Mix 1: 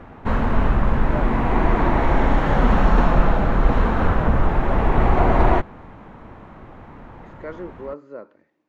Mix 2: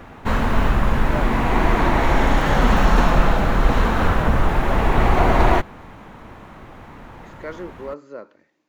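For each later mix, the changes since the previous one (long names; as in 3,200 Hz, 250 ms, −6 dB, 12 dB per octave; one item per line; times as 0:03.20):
master: remove low-pass filter 1,400 Hz 6 dB per octave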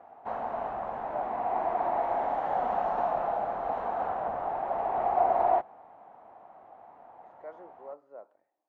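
speech: remove high-pass filter 140 Hz
master: add resonant band-pass 730 Hz, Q 6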